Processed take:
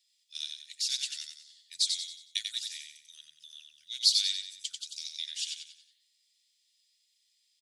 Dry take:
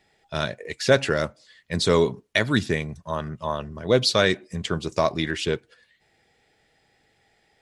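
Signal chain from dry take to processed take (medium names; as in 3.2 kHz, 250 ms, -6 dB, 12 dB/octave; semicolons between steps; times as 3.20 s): inverse Chebyshev high-pass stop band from 1.1 kHz, stop band 60 dB; feedback delay 92 ms, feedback 40%, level -5 dB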